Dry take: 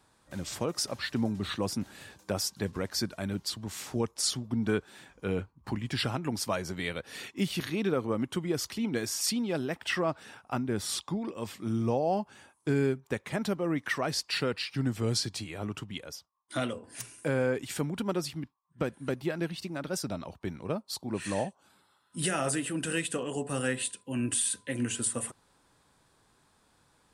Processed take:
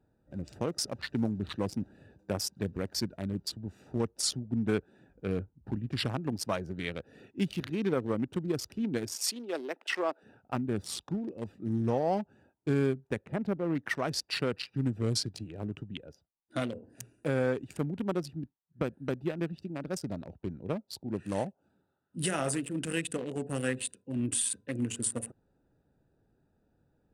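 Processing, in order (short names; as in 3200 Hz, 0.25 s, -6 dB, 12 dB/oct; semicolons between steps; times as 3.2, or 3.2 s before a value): Wiener smoothing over 41 samples; 9.16–10.23 HPF 330 Hz 24 dB/oct; 13.26–13.75 high shelf 3600 Hz -12 dB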